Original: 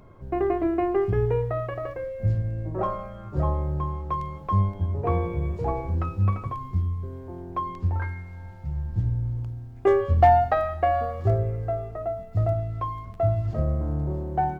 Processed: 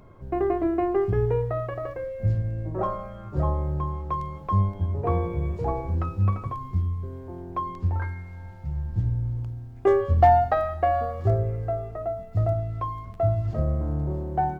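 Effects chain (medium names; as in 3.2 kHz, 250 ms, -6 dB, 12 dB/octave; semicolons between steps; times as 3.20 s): dynamic bell 2.5 kHz, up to -4 dB, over -47 dBFS, Q 1.7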